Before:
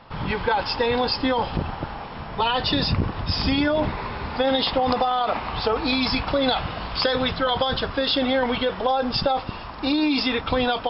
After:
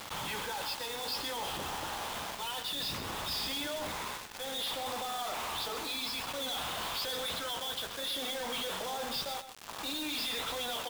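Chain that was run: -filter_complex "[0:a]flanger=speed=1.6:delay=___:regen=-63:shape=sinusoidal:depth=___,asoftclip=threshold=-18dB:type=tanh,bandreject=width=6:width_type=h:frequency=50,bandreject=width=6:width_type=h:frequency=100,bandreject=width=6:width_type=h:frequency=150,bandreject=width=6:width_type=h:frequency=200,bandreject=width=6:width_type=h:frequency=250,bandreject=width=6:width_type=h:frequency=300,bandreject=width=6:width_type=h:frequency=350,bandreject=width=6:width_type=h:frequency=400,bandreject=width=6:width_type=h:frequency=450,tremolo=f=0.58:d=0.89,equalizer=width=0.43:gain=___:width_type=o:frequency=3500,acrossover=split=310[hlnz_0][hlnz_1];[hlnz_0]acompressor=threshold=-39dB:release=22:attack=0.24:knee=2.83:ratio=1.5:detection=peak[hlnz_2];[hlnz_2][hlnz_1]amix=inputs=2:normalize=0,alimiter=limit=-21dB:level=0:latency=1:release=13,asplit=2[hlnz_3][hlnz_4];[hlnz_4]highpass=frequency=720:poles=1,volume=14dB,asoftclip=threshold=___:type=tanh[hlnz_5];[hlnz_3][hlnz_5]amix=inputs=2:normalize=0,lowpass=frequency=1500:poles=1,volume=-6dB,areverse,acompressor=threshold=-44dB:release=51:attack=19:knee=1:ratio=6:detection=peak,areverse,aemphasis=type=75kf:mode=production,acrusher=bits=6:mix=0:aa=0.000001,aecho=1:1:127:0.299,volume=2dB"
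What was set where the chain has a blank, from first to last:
9.2, 8.7, 9, -21dB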